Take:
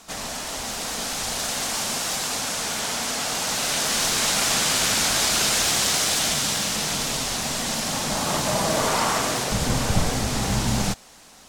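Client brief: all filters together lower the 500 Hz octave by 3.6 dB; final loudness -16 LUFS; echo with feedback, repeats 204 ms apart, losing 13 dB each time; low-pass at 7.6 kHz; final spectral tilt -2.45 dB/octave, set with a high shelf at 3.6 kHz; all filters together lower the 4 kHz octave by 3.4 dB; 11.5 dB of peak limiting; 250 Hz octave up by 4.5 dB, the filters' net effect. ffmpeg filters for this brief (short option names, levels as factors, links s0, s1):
-af "lowpass=7600,equalizer=f=250:t=o:g=7,equalizer=f=500:t=o:g=-6.5,highshelf=f=3600:g=4,equalizer=f=4000:t=o:g=-7,alimiter=limit=0.133:level=0:latency=1,aecho=1:1:204|408|612:0.224|0.0493|0.0108,volume=3.16"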